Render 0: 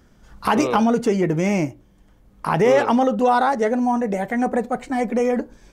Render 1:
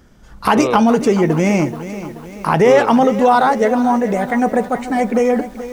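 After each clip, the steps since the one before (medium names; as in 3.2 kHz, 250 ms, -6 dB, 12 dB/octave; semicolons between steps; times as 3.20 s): bit-crushed delay 431 ms, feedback 55%, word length 7-bit, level -13 dB; trim +5 dB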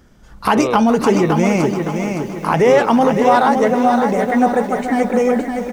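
feedback delay 565 ms, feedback 40%, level -6 dB; trim -1 dB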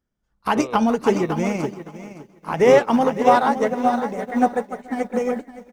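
upward expansion 2.5:1, over -29 dBFS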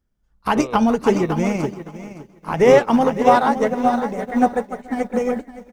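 bass shelf 86 Hz +11 dB; trim +1 dB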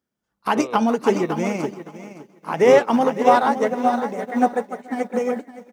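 high-pass 210 Hz 12 dB/octave; trim -1 dB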